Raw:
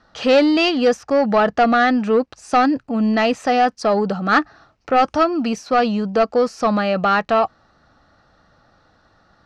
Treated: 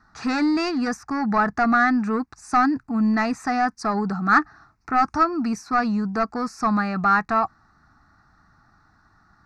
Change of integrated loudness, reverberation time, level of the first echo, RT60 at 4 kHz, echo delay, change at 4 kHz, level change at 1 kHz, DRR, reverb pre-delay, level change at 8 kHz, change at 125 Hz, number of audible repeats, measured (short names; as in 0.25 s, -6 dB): -4.5 dB, none, none, none, none, -11.0 dB, -3.0 dB, none, none, -3.0 dB, -1.5 dB, none